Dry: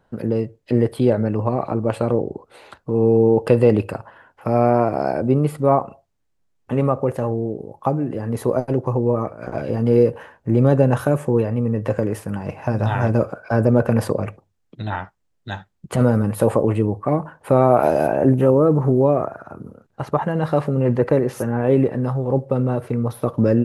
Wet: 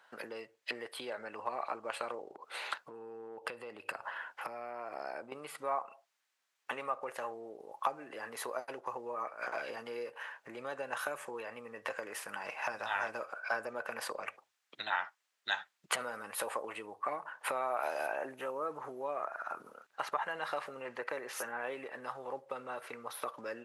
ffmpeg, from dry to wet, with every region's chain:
ffmpeg -i in.wav -filter_complex "[0:a]asettb=1/sr,asplit=3[link_01][link_02][link_03];[link_01]atrim=end=2.324[link_04];[link_02]atrim=start=2.32:end=5.32,asetpts=PTS-STARTPTS,afade=type=in:duration=0.004:curve=qsin,afade=type=out:start_time=2.996:duration=0.004:curve=qsin,lowshelf=frequency=420:gain=9,acompressor=threshold=-29dB:ratio=3:attack=3.2:release=140:knee=1:detection=peak[link_05];[link_03]atrim=start=5.316[link_06];[link_04][link_05]acrossfade=duration=0.004:curve1=hsin:curve2=qsin[link_07];[link_07][link_06]acrossfade=duration=0.004:curve1=qsin:curve2=hsin,acompressor=threshold=-31dB:ratio=3,highpass=1400,highshelf=frequency=5600:gain=-7,volume=8.5dB" out.wav

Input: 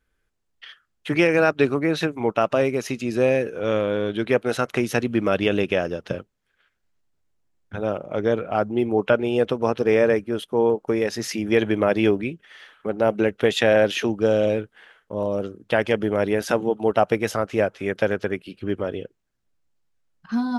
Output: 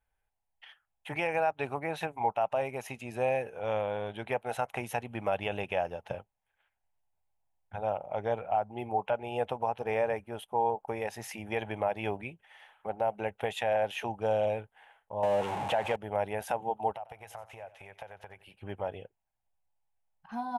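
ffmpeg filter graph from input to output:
ffmpeg -i in.wav -filter_complex "[0:a]asettb=1/sr,asplit=3[link_01][link_02][link_03];[link_01]atrim=end=15.234[link_04];[link_02]atrim=start=15.23:end=15.96,asetpts=PTS-STARTPTS,afade=type=in:duration=0.004:curve=qsin,afade=type=out:start_time=0.726:duration=0.004:curve=qsin,aeval=exprs='val(0)+0.5*0.0531*sgn(val(0))':channel_layout=same,acontrast=59,highpass=110,lowpass=6300[link_05];[link_03]atrim=start=15.956[link_06];[link_04][link_05]acrossfade=duration=0.004:curve1=hsin:curve2=qsin[link_07];[link_07][link_06]acrossfade=duration=0.004:curve1=qsin:curve2=hsin,asettb=1/sr,asplit=3[link_08][link_09][link_10];[link_08]atrim=end=16.964[link_11];[link_09]atrim=start=16.96:end=18.54,asetpts=PTS-STARTPTS,afade=type=in:duration=0.004:curve=qsin,afade=type=out:start_time=1.576:duration=0.004:curve=qsin,equalizer=frequency=250:width=1.1:gain=-11,acompressor=threshold=-34dB:ratio=8:attack=3.2:release=140:knee=1:detection=peak,aecho=1:1:91|182|273:0.15|0.0569|0.0216,atrim=end_sample=69678[link_12];[link_10]atrim=start=18.536[link_13];[link_11][link_12]acrossfade=duration=0.004:curve1=hsin:curve2=qsin[link_14];[link_14][link_13]acrossfade=duration=0.004:curve1=qsin:curve2=hsin,firequalizer=gain_entry='entry(100,0);entry(150,-5);entry(310,-12);entry(820,14);entry(1200,-4);entry(2500,1);entry(4600,-11);entry(9300,2)':delay=0.05:min_phase=1,alimiter=limit=-10dB:level=0:latency=1:release=238,volume=-8.5dB" out.wav

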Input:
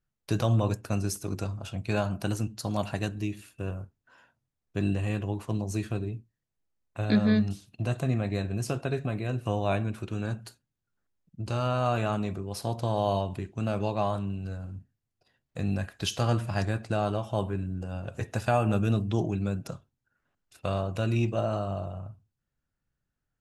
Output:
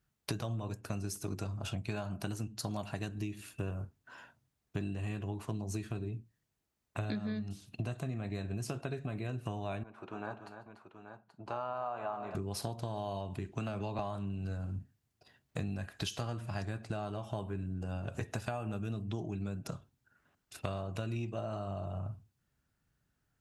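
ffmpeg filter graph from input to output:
ffmpeg -i in.wav -filter_complex "[0:a]asettb=1/sr,asplit=3[link_01][link_02][link_03];[link_01]atrim=end=9.834[link_04];[link_02]atrim=start=9.83:end=12.35,asetpts=PTS-STARTPTS,afade=type=in:duration=0.004:curve=qsin,afade=type=out:start_time=2.516:duration=0.004:curve=qsin,bandpass=frequency=880:width_type=q:width=2,aecho=1:1:145|292|831:0.112|0.299|0.282,atrim=end_sample=111132[link_05];[link_03]atrim=start=12.346[link_06];[link_04][link_05]acrossfade=duration=0.004:curve1=hsin:curve2=qsin[link_07];[link_07][link_06]acrossfade=duration=0.004:curve1=qsin:curve2=hsin,asettb=1/sr,asplit=3[link_08][link_09][link_10];[link_08]atrim=end=13.524[link_11];[link_09]atrim=start=13.52:end=13.99,asetpts=PTS-STARTPTS,afade=type=in:duration=0.004:curve=qsin,afade=type=out:start_time=0.466:duration=0.004:curve=qsin,equalizer=frequency=1800:width=0.35:gain=4,acrossover=split=180|520[link_12][link_13][link_14];[link_12]acompressor=threshold=-35dB:ratio=4[link_15];[link_13]acompressor=threshold=-37dB:ratio=4[link_16];[link_14]acompressor=threshold=-37dB:ratio=4[link_17];[link_15][link_16][link_17]amix=inputs=3:normalize=0[link_18];[link_10]atrim=start=13.986[link_19];[link_11][link_18]acrossfade=duration=0.004:curve1=hsin:curve2=qsin[link_20];[link_20][link_19]acrossfade=duration=0.004:curve1=qsin:curve2=hsin,highpass=45,bandreject=frequency=520:width=12,acompressor=threshold=-40dB:ratio=12,volume=6dB" out.wav

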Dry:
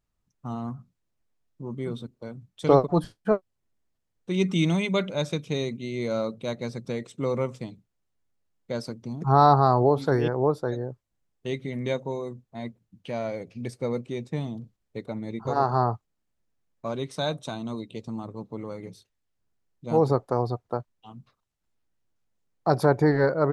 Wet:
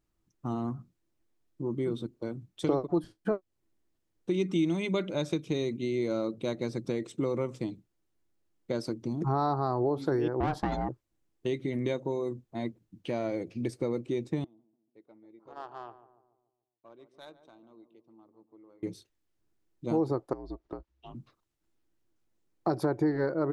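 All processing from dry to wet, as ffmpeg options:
ffmpeg -i in.wav -filter_complex "[0:a]asettb=1/sr,asplit=3[link_01][link_02][link_03];[link_01]atrim=end=10.404[link_04];[link_02]atrim=start=10.4:end=10.89,asetpts=PTS-STARTPTS,afade=type=in:duration=0.004:curve=qsin,afade=type=out:start_time=0.486:duration=0.004:curve=qsin,highpass=150,asplit=2[link_05][link_06];[link_06]highpass=frequency=720:poles=1,volume=21dB,asoftclip=type=tanh:threshold=-11.5dB[link_07];[link_05][link_07]amix=inputs=2:normalize=0,lowpass=frequency=3300:poles=1,volume=-6dB,aeval=exprs='val(0)*sin(2*PI*310*n/s)':channel_layout=same[link_08];[link_03]atrim=start=10.886[link_09];[link_04][link_08]acrossfade=duration=0.004:curve1=hsin:curve2=qsin[link_10];[link_10][link_09]acrossfade=duration=0.004:curve1=qsin:curve2=hsin,asettb=1/sr,asplit=3[link_11][link_12][link_13];[link_11]atrim=end=14.444[link_14];[link_12]atrim=start=14.44:end=18.83,asetpts=PTS-STARTPTS,afade=type=in:duration=0.004:curve=qsin,afade=type=out:start_time=4.386:duration=0.004:curve=qsin,aderivative,adynamicsmooth=sensitivity=3.5:basefreq=820,asplit=2[link_15][link_16];[link_16]adelay=144,lowpass=frequency=990:poles=1,volume=-11.5dB,asplit=2[link_17][link_18];[link_18]adelay=144,lowpass=frequency=990:poles=1,volume=0.54,asplit=2[link_19][link_20];[link_20]adelay=144,lowpass=frequency=990:poles=1,volume=0.54,asplit=2[link_21][link_22];[link_22]adelay=144,lowpass=frequency=990:poles=1,volume=0.54,asplit=2[link_23][link_24];[link_24]adelay=144,lowpass=frequency=990:poles=1,volume=0.54,asplit=2[link_25][link_26];[link_26]adelay=144,lowpass=frequency=990:poles=1,volume=0.54[link_27];[link_15][link_17][link_19][link_21][link_23][link_25][link_27]amix=inputs=7:normalize=0,atrim=end_sample=193599[link_28];[link_13]atrim=start=18.826[link_29];[link_14][link_28]acrossfade=duration=0.004:curve1=hsin:curve2=qsin[link_30];[link_30][link_29]acrossfade=duration=0.004:curve1=qsin:curve2=hsin,asettb=1/sr,asplit=3[link_31][link_32][link_33];[link_31]atrim=end=20.334[link_34];[link_32]atrim=start=20.33:end=21.15,asetpts=PTS-STARTPTS,afade=type=in:duration=0.004:curve=qsin,afade=type=out:start_time=0.816:duration=0.004:curve=qsin,lowpass=5400,acompressor=threshold=-42dB:ratio=3:attack=3.2:release=140:knee=1:detection=peak,afreqshift=-67[link_35];[link_33]atrim=start=21.146[link_36];[link_34][link_35]acrossfade=duration=0.004:curve1=hsin:curve2=qsin[link_37];[link_37][link_36]acrossfade=duration=0.004:curve1=qsin:curve2=hsin,equalizer=frequency=330:width=4:gain=13,acompressor=threshold=-28dB:ratio=3" out.wav

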